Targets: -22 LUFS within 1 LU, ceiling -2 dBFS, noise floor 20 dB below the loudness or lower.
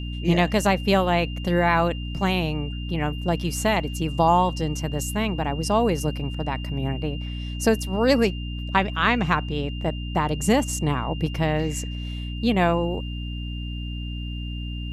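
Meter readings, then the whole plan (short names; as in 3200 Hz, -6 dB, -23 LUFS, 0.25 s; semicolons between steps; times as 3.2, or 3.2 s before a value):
hum 60 Hz; harmonics up to 300 Hz; hum level -28 dBFS; steady tone 2800 Hz; tone level -39 dBFS; loudness -24.0 LUFS; peak -5.5 dBFS; loudness target -22.0 LUFS
-> de-hum 60 Hz, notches 5; notch 2800 Hz, Q 30; gain +2 dB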